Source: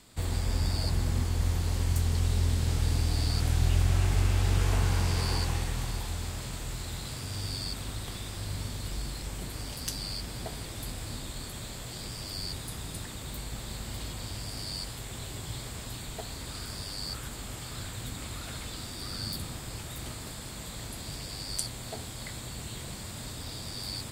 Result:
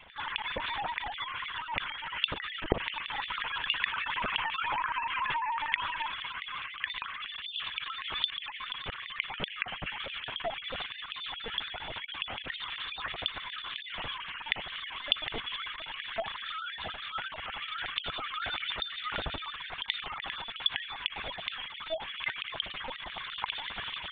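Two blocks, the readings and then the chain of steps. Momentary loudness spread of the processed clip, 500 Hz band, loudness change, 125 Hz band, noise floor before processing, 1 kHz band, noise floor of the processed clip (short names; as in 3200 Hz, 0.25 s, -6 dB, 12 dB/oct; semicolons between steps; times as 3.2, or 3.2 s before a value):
7 LU, 0.0 dB, -1.0 dB, -21.5 dB, -41 dBFS, +8.0 dB, -45 dBFS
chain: sine-wave speech; limiter -19.5 dBFS, peak gain reduction 9.5 dB; LPC vocoder at 8 kHz pitch kept; gain -5 dB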